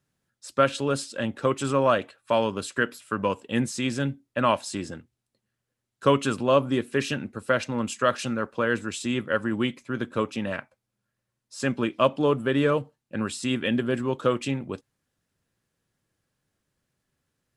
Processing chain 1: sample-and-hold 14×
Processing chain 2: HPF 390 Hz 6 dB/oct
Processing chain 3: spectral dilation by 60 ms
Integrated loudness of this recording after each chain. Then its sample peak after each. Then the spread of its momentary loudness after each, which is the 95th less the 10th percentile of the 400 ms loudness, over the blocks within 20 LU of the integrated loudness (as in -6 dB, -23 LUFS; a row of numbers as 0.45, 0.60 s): -26.0, -28.5, -23.0 LUFS; -6.5, -7.5, -4.0 dBFS; 10, 10, 9 LU